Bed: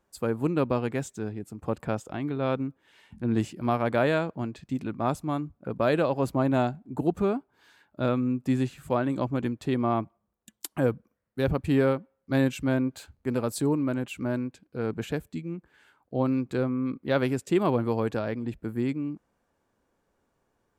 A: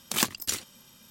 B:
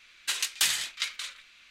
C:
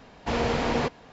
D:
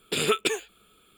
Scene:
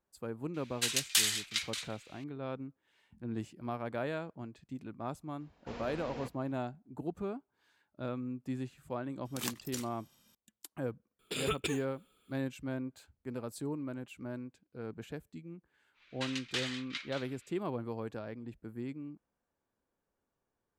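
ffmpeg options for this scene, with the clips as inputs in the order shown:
-filter_complex "[2:a]asplit=2[a][b];[0:a]volume=-12.5dB[c];[a]highshelf=f=2k:g=6.5[d];[3:a]asoftclip=type=tanh:threshold=-15dB[e];[b]lowpass=3.8k[f];[d]atrim=end=1.7,asetpts=PTS-STARTPTS,volume=-7.5dB,afade=t=in:d=0.004:c=hsin,afade=t=out:st=1.696:d=0.004:c=hsin,adelay=540[g];[e]atrim=end=1.12,asetpts=PTS-STARTPTS,volume=-18dB,afade=t=in:d=0.004:c=hsin,afade=t=out:st=1.116:d=0.004:c=hsin,adelay=5400[h];[1:a]atrim=end=1.1,asetpts=PTS-STARTPTS,volume=-12.5dB,afade=t=in:d=0.004:c=hsin,afade=t=out:st=1.096:d=0.004:c=hsin,adelay=9250[i];[4:a]atrim=end=1.17,asetpts=PTS-STARTPTS,volume=-10.5dB,afade=t=in:d=0.004:c=hsin,afade=t=out:st=1.166:d=0.004:c=hsin,adelay=11190[j];[f]atrim=end=1.7,asetpts=PTS-STARTPTS,volume=-7dB,afade=t=in:d=0.1,afade=t=out:st=1.6:d=0.1,adelay=15930[k];[c][g][h][i][j][k]amix=inputs=6:normalize=0"

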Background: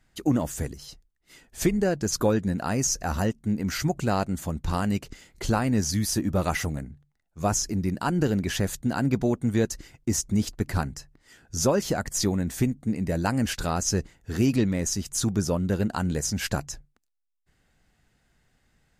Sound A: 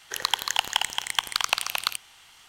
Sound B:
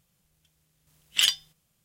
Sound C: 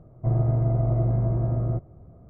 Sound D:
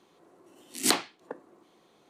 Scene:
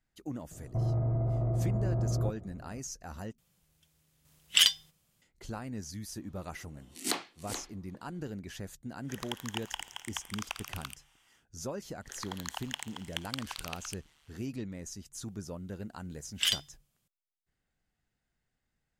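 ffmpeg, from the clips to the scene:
-filter_complex "[2:a]asplit=2[a][b];[1:a]asplit=2[c][d];[0:a]volume=-16dB[e];[3:a]alimiter=limit=-24dB:level=0:latency=1:release=25[f];[4:a]aecho=1:1:429:0.355[g];[c]equalizer=f=4.2k:w=7.3:g=-14.5[h];[d]tremolo=f=150:d=0.919[i];[e]asplit=2[j][k];[j]atrim=end=3.384[l];[a]atrim=end=1.84,asetpts=PTS-STARTPTS,volume=-0.5dB[m];[k]atrim=start=5.216[n];[f]atrim=end=2.29,asetpts=PTS-STARTPTS,volume=-0.5dB,afade=t=in:d=0.004:c=hsin,afade=t=out:st=2.286:d=0.004:c=hsin,adelay=510[o];[g]atrim=end=2.09,asetpts=PTS-STARTPTS,volume=-8dB,afade=t=in:d=0.004:c=hsin,afade=t=out:st=2.086:d=0.004:c=hsin,adelay=6210[p];[h]atrim=end=2.48,asetpts=PTS-STARTPTS,volume=-14dB,afade=t=in:d=0.1,afade=t=out:st=2.38:d=0.1,adelay=396018S[q];[i]atrim=end=2.48,asetpts=PTS-STARTPTS,volume=-11dB,afade=t=in:d=0.1,afade=t=out:st=2.38:d=0.1,adelay=11980[r];[b]atrim=end=1.84,asetpts=PTS-STARTPTS,volume=-6.5dB,afade=t=in:d=0.004:c=hsin,afade=t=out:st=1.836:d=0.004:c=hsin,adelay=672084S[s];[l][m]acrossfade=d=0.004:c1=hsin:c2=hsin[t];[t][n]acrossfade=d=0.004:c1=hsin:c2=hsin[u];[u][o][p][q][r][s]amix=inputs=6:normalize=0"

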